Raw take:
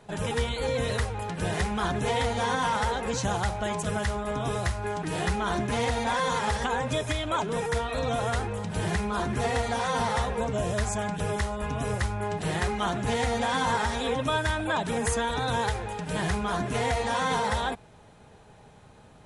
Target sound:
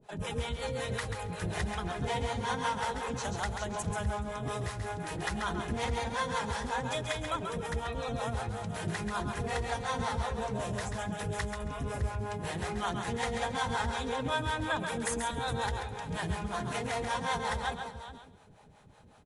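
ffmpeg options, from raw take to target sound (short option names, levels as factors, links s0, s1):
-filter_complex "[0:a]asplit=2[s0][s1];[s1]aecho=0:1:428:0.266[s2];[s0][s2]amix=inputs=2:normalize=0,acrossover=split=460[s3][s4];[s3]aeval=exprs='val(0)*(1-1/2+1/2*cos(2*PI*5.4*n/s))':c=same[s5];[s4]aeval=exprs='val(0)*(1-1/2-1/2*cos(2*PI*5.4*n/s))':c=same[s6];[s5][s6]amix=inputs=2:normalize=0,asplit=2[s7][s8];[s8]aecho=0:1:136|272|408:0.473|0.0757|0.0121[s9];[s7][s9]amix=inputs=2:normalize=0,volume=0.75"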